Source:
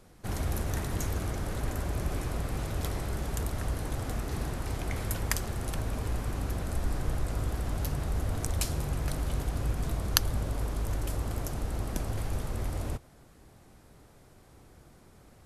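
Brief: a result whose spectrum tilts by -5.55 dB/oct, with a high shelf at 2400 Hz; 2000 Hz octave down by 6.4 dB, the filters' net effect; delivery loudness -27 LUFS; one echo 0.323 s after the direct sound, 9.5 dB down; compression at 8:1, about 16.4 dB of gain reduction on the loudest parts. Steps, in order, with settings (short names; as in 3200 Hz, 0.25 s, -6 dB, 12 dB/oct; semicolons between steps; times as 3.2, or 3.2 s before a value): bell 2000 Hz -7 dB; high shelf 2400 Hz -3 dB; compressor 8:1, threshold -39 dBFS; echo 0.323 s -9.5 dB; gain +17.5 dB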